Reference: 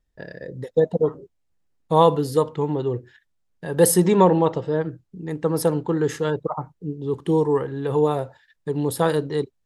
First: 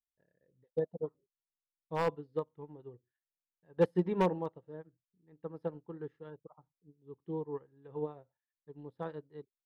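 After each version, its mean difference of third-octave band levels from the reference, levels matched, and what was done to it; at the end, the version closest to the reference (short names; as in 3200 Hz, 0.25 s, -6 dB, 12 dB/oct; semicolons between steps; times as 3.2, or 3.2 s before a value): 8.0 dB: air absorption 350 m; wavefolder -8 dBFS; upward expander 2.5:1, over -31 dBFS; gain -8.5 dB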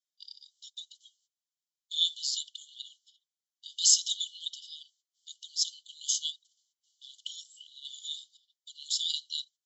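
21.0 dB: gate -39 dBFS, range -13 dB; brick-wall FIR band-pass 2900–7700 Hz; high shelf 5700 Hz +7.5 dB; gain +7 dB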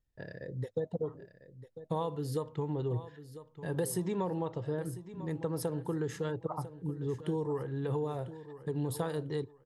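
4.0 dB: compressor 5:1, threshold -23 dBFS, peak gain reduction 12.5 dB; bell 110 Hz +9.5 dB 0.68 oct; on a send: feedback echo 0.998 s, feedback 25%, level -14 dB; on the sum: gain -8.5 dB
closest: third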